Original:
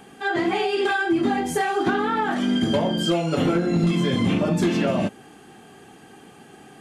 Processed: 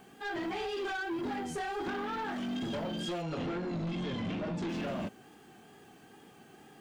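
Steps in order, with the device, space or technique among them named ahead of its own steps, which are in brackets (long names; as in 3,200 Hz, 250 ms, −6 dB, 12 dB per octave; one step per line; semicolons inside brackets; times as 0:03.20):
compact cassette (soft clipping −23 dBFS, distortion −10 dB; low-pass filter 8,700 Hz 12 dB per octave; tape wow and flutter; white noise bed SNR 35 dB)
0:03.22–0:04.69: low-pass filter 5,800 Hz 12 dB per octave
level −9 dB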